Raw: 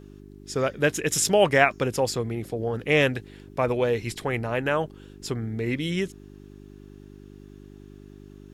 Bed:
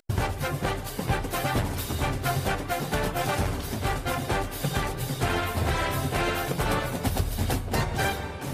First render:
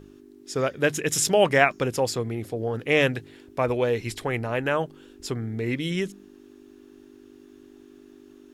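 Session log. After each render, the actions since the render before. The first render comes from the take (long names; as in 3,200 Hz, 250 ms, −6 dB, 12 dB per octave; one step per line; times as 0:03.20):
hum removal 50 Hz, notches 4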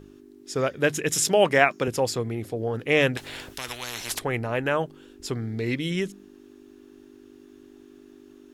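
0:01.12–0:01.88: high-pass filter 140 Hz
0:03.17–0:04.19: every bin compressed towards the loudest bin 10 to 1
0:05.33–0:05.76: parametric band 4,500 Hz +10.5 dB 0.61 octaves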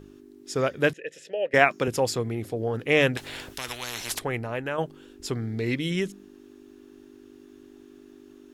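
0:00.93–0:01.54: formant filter e
0:04.03–0:04.78: fade out, to −7 dB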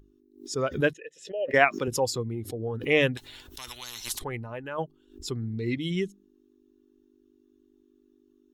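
spectral dynamics exaggerated over time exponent 1.5
background raised ahead of every attack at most 140 dB per second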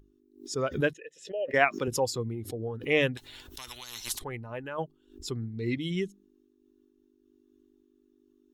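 amplitude modulation by smooth noise, depth 55%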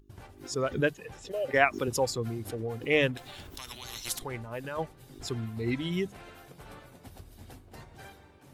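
mix in bed −22.5 dB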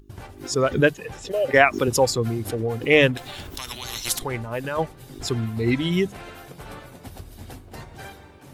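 level +9 dB
brickwall limiter −2 dBFS, peak gain reduction 3 dB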